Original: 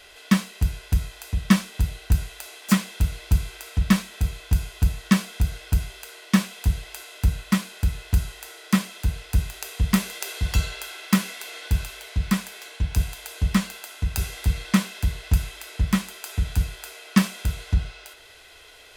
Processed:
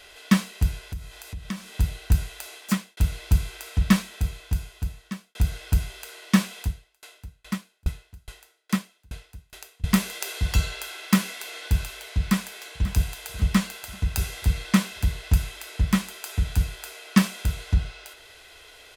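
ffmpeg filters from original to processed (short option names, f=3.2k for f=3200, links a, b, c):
-filter_complex "[0:a]asettb=1/sr,asplit=3[a][b][c];[a]atrim=end=0.794[d];[b]atrim=start=0.79:end=1.73,asetpts=PTS-STARTPTS,afade=t=in:d=0.004:c=qsin,afade=t=out:st=0.936:d=0.004:c=qsin,acompressor=threshold=-40dB:ratio=2:attack=3.2:release=140:knee=1:detection=peak[e];[c]atrim=start=1.726[f];[d][e]acrossfade=d=0.004:c1=hsin:c2=qsin[g];[g][f]acrossfade=d=0.004:c1=qsin:c2=hsin,asettb=1/sr,asplit=3[h][i][j];[h]atrim=end=6.614[k];[i]atrim=start=6.61:end=9.84,asetpts=PTS-STARTPTS,afade=t=in:d=0.004:c=qsin,afade=t=out:st=3.226:d=0.004:c=qsin,aeval=exprs='val(0)*pow(10,-37*if(lt(mod(2.4*n/s,1),2*abs(2.4)/1000),1-mod(2.4*n/s,1)/(2*abs(2.4)/1000),(mod(2.4*n/s,1)-2*abs(2.4)/1000)/(1-2*abs(2.4)/1000))/20)':c=same[l];[j]atrim=start=9.836[m];[k][l]acrossfade=d=0.004:c1=hsin:c2=qsin[n];[n][m]acrossfade=d=0.004:c1=qsin:c2=hsin,asplit=2[o][p];[p]afade=t=in:st=12.21:d=0.01,afade=t=out:st=12.92:d=0.01,aecho=0:1:540|1080|1620|2160|2700:0.188365|0.103601|0.0569804|0.0313392|0.0172366[q];[o][q]amix=inputs=2:normalize=0,asplit=3[r][s][t];[r]atrim=end=2.97,asetpts=PTS-STARTPTS,afade=t=out:st=2.54:d=0.43[u];[s]atrim=start=2.97:end=5.35,asetpts=PTS-STARTPTS,afade=t=in:d=0.004:c=hsin,afade=t=out:st=0.98:d=1.4[v];[t]atrim=start=5.35,asetpts=PTS-STARTPTS,afade=t=in:d=0.004:c=hsin[w];[u][v][w]concat=n=3:v=0:a=1"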